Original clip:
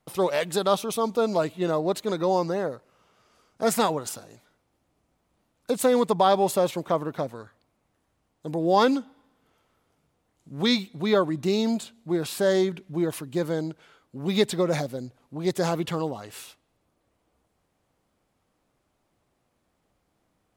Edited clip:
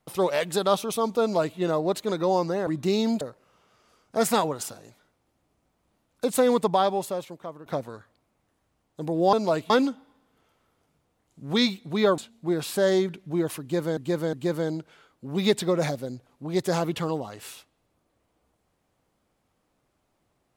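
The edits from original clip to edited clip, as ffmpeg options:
-filter_complex "[0:a]asplit=9[a][b][c][d][e][f][g][h][i];[a]atrim=end=2.672[j];[b]atrim=start=11.268:end=11.812[k];[c]atrim=start=2.668:end=7.12,asetpts=PTS-STARTPTS,afade=t=out:st=3.432:d=1.02:c=qua:silence=0.199526[l];[d]atrim=start=7.12:end=8.792,asetpts=PTS-STARTPTS,afade=t=in:d=0.004:c=hsin:silence=0.199526[m];[e]atrim=start=1.208:end=1.582[n];[f]atrim=start=8.788:end=11.272[o];[g]atrim=start=11.808:end=13.602[p];[h]atrim=start=13.238:end=13.602[q];[i]atrim=start=13.238[r];[j][k]acrossfade=d=0.004:c1=hsin:c2=hsin[s];[l][m]concat=n=2:v=0:a=1[t];[s][t]acrossfade=d=0.004:c1=hsin:c2=hsin[u];[u][n]acrossfade=d=0.004:c1=hsin:c2=hsin[v];[v][o]acrossfade=d=0.004:c1=hsin:c2=hsin[w];[w][p]acrossfade=d=0.004:c1=hsin:c2=hsin[x];[x][q]acrossfade=d=0.004:c1=hsin:c2=hsin[y];[y][r]acrossfade=d=0.004:c1=hsin:c2=hsin"

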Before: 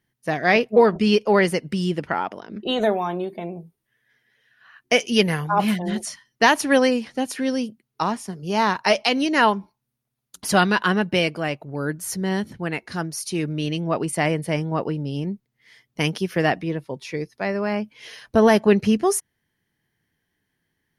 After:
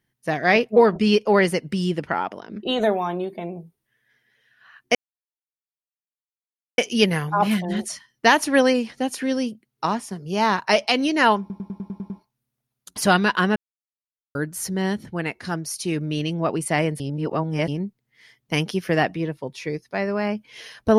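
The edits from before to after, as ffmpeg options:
-filter_complex "[0:a]asplit=13[a][b][c][d][e][f][g][h][i][j][k][l][m];[a]atrim=end=4.95,asetpts=PTS-STARTPTS,afade=t=out:st=4.946:d=0.004:c=hsin,apad=pad_dur=1.83[n];[b]atrim=start=4.95:end=9.672,asetpts=PTS-STARTPTS,afade=t=in:d=0.004:c=hsin[o];[c]atrim=start=9.568:end=9.672[p];[d]atrim=start=9.568:end=9.672[q];[e]atrim=start=9.568:end=9.672[r];[f]atrim=start=9.568:end=9.672[s];[g]atrim=start=9.568:end=9.672[t];[h]atrim=start=9.568:end=9.672[u];[i]atrim=start=9.568:end=11.03,asetpts=PTS-STARTPTS,afade=t=out:st=1.458:d=0.004:c=hsin[v];[j]atrim=start=11.03:end=11.82,asetpts=PTS-STARTPTS,volume=0[w];[k]atrim=start=11.82:end=14.472,asetpts=PTS-STARTPTS,afade=t=in:d=0.004:c=hsin[x];[l]atrim=start=14.468:end=15.152,asetpts=PTS-STARTPTS,areverse[y];[m]atrim=start=15.148[z];[n][o]concat=n=2:v=0:a=1[aa];[aa][p]acrossfade=d=0.004:c1=hsin:c2=hsin[ab];[ab][q]acrossfade=d=0.004:c1=hsin:c2=hsin[ac];[ac][r]acrossfade=d=0.004:c1=hsin:c2=hsin[ad];[ad][s]acrossfade=d=0.004:c1=hsin:c2=hsin[ae];[ae][t]acrossfade=d=0.004:c1=hsin:c2=hsin[af];[af][u]acrossfade=d=0.004:c1=hsin:c2=hsin[ag];[v][w][x]concat=n=3:v=0:a=1[ah];[ag][ah]acrossfade=d=0.004:c1=hsin:c2=hsin[ai];[ai][y]acrossfade=d=0.004:c1=hsin:c2=hsin[aj];[aj][z]acrossfade=d=0.004:c1=hsin:c2=hsin"

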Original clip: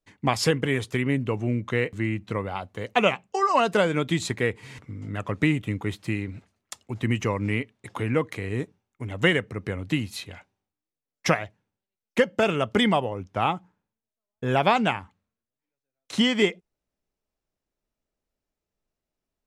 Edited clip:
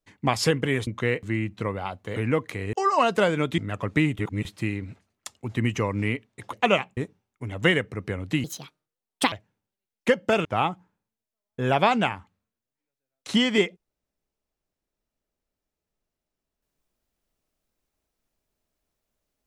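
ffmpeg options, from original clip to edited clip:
-filter_complex "[0:a]asplit=12[a][b][c][d][e][f][g][h][i][j][k][l];[a]atrim=end=0.872[m];[b]atrim=start=1.568:end=2.862[n];[c]atrim=start=7.988:end=8.562[o];[d]atrim=start=3.298:end=4.152[p];[e]atrim=start=5.038:end=5.652[q];[f]atrim=start=5.648:end=5.912,asetpts=PTS-STARTPTS,areverse[r];[g]atrim=start=5.908:end=7.992[s];[h]atrim=start=2.858:end=3.302[t];[i]atrim=start=8.558:end=10.034[u];[j]atrim=start=10.03:end=11.42,asetpts=PTS-STARTPTS,asetrate=69678,aresample=44100[v];[k]atrim=start=11.416:end=12.552[w];[l]atrim=start=13.288[x];[m][n]acrossfade=d=0.004:c1=hsin:c2=hsin[y];[y][o]acrossfade=d=0.004:c1=hsin:c2=hsin[z];[z][p]acrossfade=d=0.004:c1=hsin:c2=hsin[aa];[aa][q]acrossfade=d=0.004:c1=hsin:c2=hsin[ab];[ab][r]acrossfade=d=0.004:c1=hsin:c2=hsin[ac];[ac][s]acrossfade=d=0.004:c1=hsin:c2=hsin[ad];[ad][t]acrossfade=d=0.004:c1=hsin:c2=hsin[ae];[ae][u]acrossfade=d=0.004:c1=hsin:c2=hsin[af];[af][v]acrossfade=d=0.004:c1=hsin:c2=hsin[ag];[ag][w]acrossfade=d=0.004:c1=hsin:c2=hsin[ah];[ah][x]acrossfade=d=0.004:c1=hsin:c2=hsin"

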